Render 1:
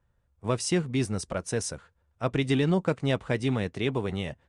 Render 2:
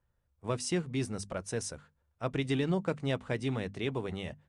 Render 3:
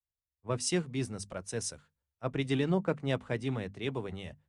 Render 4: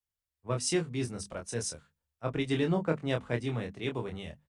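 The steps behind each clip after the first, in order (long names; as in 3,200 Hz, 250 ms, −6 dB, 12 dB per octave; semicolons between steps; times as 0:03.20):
mains-hum notches 50/100/150/200/250 Hz; level −5.5 dB
multiband upward and downward expander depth 70%
double-tracking delay 25 ms −5 dB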